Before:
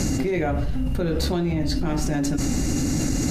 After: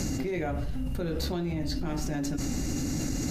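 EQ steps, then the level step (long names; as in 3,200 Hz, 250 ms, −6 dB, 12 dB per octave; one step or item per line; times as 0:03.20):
high-shelf EQ 6,200 Hz +6 dB
dynamic equaliser 9,200 Hz, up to −7 dB, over −46 dBFS, Q 1.5
−7.5 dB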